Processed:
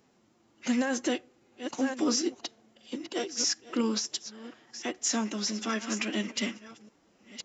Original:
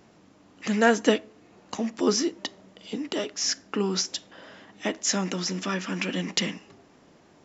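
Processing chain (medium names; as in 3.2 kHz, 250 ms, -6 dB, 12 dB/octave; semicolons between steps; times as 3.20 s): chunks repeated in reverse 689 ms, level -12.5 dB; treble shelf 6.8 kHz +8 dB; peak limiter -16.5 dBFS, peak gain reduction 11.5 dB; formant-preserving pitch shift +2.5 st; upward expansion 1.5:1, over -43 dBFS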